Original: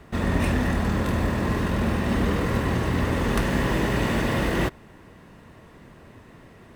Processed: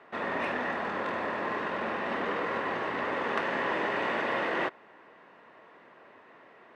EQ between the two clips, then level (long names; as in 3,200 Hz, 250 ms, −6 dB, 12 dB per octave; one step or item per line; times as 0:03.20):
band-pass filter 540–2,400 Hz
0.0 dB